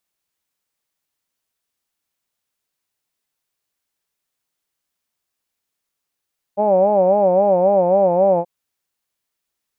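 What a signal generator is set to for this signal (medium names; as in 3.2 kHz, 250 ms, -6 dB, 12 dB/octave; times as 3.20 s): formant-synthesis vowel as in hawed, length 1.88 s, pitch 199 Hz, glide -1.5 st, vibrato 3.7 Hz, vibrato depth 1.25 st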